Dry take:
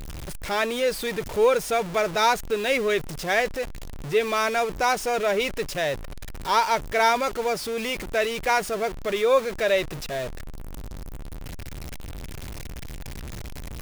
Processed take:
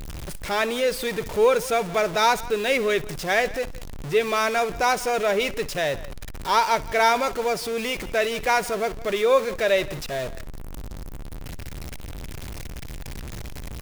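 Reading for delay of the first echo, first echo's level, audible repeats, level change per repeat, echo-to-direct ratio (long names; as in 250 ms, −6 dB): 61 ms, −20.0 dB, 2, repeats not evenly spaced, −16.5 dB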